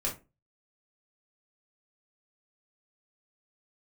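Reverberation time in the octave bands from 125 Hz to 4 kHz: 0.40, 0.35, 0.30, 0.25, 0.25, 0.15 s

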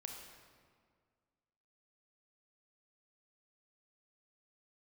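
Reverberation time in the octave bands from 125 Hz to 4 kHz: 2.1, 2.1, 2.0, 1.8, 1.5, 1.2 s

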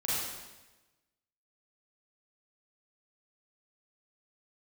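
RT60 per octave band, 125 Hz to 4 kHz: 1.2, 1.2, 1.1, 1.1, 1.1, 1.0 s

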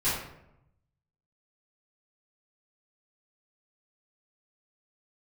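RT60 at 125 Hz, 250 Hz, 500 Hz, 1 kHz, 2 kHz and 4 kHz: 1.3, 0.95, 0.85, 0.75, 0.65, 0.45 s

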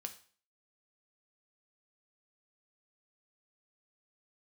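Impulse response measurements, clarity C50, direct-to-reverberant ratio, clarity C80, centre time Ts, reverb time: 13.0 dB, 6.0 dB, 17.5 dB, 7 ms, 0.45 s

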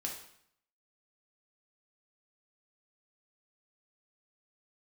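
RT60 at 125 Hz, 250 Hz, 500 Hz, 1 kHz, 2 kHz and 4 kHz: 0.75, 0.75, 0.65, 0.70, 0.65, 0.60 s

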